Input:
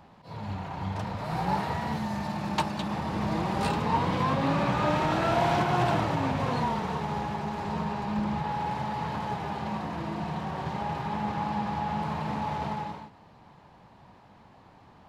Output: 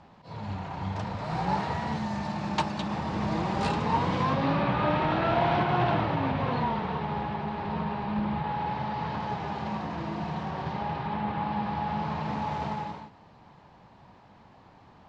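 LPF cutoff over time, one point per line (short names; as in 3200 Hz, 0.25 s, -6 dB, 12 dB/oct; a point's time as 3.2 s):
LPF 24 dB/oct
4.16 s 7500 Hz
4.67 s 4000 Hz
8.45 s 4000 Hz
9.55 s 6400 Hz
10.43 s 6400 Hz
11.31 s 3800 Hz
12.57 s 7300 Hz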